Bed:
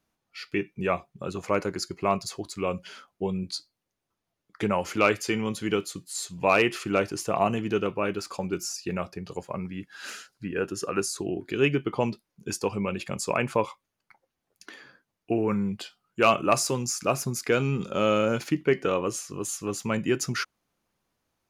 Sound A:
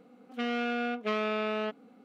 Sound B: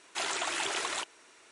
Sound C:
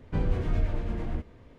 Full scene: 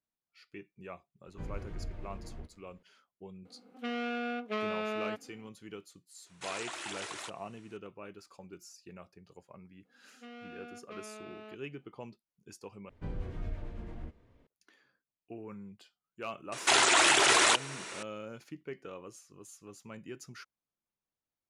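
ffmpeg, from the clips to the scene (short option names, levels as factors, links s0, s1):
-filter_complex "[3:a]asplit=2[s0][s1];[1:a]asplit=2[s2][s3];[2:a]asplit=2[s4][s5];[0:a]volume=0.106[s6];[s2]aresample=32000,aresample=44100[s7];[s5]alimiter=level_in=23.7:limit=0.891:release=50:level=0:latency=1[s8];[s6]asplit=2[s9][s10];[s9]atrim=end=12.894[s11];[s1]atrim=end=1.58,asetpts=PTS-STARTPTS,volume=0.266[s12];[s10]atrim=start=14.466[s13];[s0]atrim=end=1.58,asetpts=PTS-STARTPTS,volume=0.2,afade=t=in:d=0.004:c=hsin,afade=t=out:st=1.576:d=0.004:c=hsin,adelay=1250[s14];[s7]atrim=end=2.04,asetpts=PTS-STARTPTS,volume=0.631,afade=t=in:d=0.004:c=hsin,afade=t=out:st=2.036:d=0.004:c=hsin,adelay=152145S[s15];[s4]atrim=end=1.51,asetpts=PTS-STARTPTS,volume=0.376,afade=t=in:d=0.004:c=hsin,afade=t=out:st=1.506:d=0.004:c=hsin,adelay=276066S[s16];[s3]atrim=end=2.04,asetpts=PTS-STARTPTS,volume=0.141,afade=t=in:d=0.02,afade=t=out:st=2.02:d=0.02,adelay=9840[s17];[s8]atrim=end=1.51,asetpts=PTS-STARTPTS,volume=0.237,afade=t=in:d=0.004:c=hsin,afade=t=out:st=1.506:d=0.004:c=hsin,adelay=728532S[s18];[s11][s12]acrossfade=d=0.004:c1=hsin:c2=hsin[s19];[s19][s13]acrossfade=d=0.004:c1=hsin:c2=hsin[s20];[s20][s14][s15][s16][s17][s18]amix=inputs=6:normalize=0"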